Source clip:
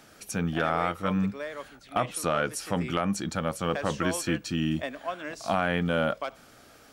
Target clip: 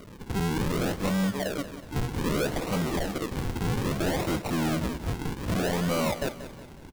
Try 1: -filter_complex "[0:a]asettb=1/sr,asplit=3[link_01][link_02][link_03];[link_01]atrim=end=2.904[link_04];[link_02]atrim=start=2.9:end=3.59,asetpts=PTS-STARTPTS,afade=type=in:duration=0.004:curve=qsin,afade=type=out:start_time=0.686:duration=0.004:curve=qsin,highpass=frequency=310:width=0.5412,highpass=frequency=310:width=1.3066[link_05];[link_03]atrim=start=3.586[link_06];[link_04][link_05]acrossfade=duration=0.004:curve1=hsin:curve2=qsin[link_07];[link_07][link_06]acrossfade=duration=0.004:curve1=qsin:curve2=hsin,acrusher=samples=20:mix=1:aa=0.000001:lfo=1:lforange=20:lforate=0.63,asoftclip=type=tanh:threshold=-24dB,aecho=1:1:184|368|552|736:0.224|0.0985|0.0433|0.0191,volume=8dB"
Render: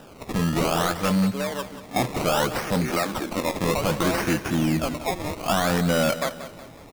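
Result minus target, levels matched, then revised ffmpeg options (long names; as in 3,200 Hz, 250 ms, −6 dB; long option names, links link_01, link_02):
sample-and-hold swept by an LFO: distortion −7 dB; soft clipping: distortion −6 dB
-filter_complex "[0:a]asettb=1/sr,asplit=3[link_01][link_02][link_03];[link_01]atrim=end=2.904[link_04];[link_02]atrim=start=2.9:end=3.59,asetpts=PTS-STARTPTS,afade=type=in:duration=0.004:curve=qsin,afade=type=out:start_time=0.686:duration=0.004:curve=qsin,highpass=frequency=310:width=0.5412,highpass=frequency=310:width=1.3066[link_05];[link_03]atrim=start=3.586[link_06];[link_04][link_05]acrossfade=duration=0.004:curve1=hsin:curve2=qsin[link_07];[link_07][link_06]acrossfade=duration=0.004:curve1=qsin:curve2=hsin,acrusher=samples=50:mix=1:aa=0.000001:lfo=1:lforange=50:lforate=0.63,asoftclip=type=tanh:threshold=-32dB,aecho=1:1:184|368|552|736:0.224|0.0985|0.0433|0.0191,volume=8dB"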